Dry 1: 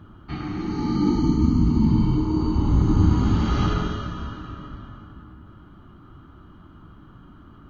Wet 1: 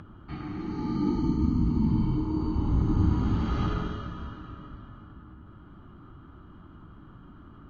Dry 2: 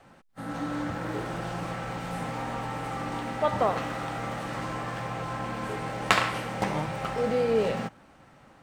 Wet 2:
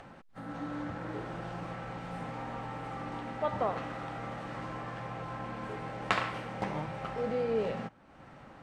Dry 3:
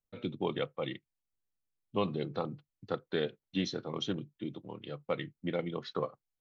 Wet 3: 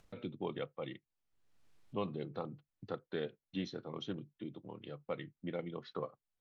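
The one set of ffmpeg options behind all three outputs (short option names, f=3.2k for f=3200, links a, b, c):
-af "acompressor=mode=upward:threshold=-35dB:ratio=2.5,aemphasis=mode=reproduction:type=50fm,volume=-6.5dB"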